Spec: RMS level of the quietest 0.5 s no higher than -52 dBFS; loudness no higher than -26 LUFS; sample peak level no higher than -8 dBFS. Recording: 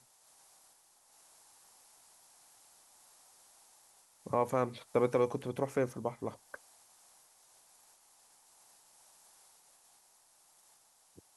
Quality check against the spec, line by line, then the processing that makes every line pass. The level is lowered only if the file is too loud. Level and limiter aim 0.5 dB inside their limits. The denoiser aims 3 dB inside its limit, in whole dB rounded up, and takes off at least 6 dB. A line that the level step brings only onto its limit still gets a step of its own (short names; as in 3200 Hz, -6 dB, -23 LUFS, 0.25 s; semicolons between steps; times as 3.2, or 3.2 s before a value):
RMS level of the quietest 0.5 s -66 dBFS: OK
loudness -34.0 LUFS: OK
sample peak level -16.0 dBFS: OK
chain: none